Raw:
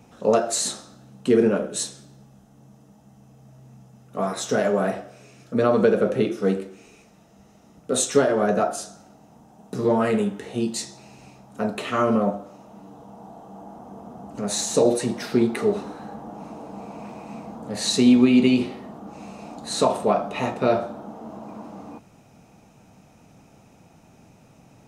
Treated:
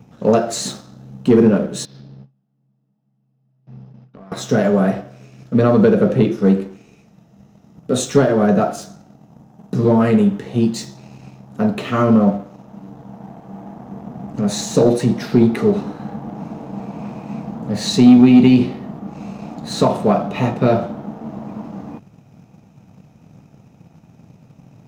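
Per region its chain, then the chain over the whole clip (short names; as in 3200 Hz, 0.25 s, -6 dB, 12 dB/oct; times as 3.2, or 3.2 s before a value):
1.85–4.32 gate with hold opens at -40 dBFS, closes at -46 dBFS + Chebyshev band-pass 130–5000 Hz, order 4 + compressor, threshold -43 dBFS
whole clip: bell 140 Hz +12 dB 1.7 oct; sample leveller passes 1; bell 9000 Hz -8.5 dB 0.57 oct; gain -1 dB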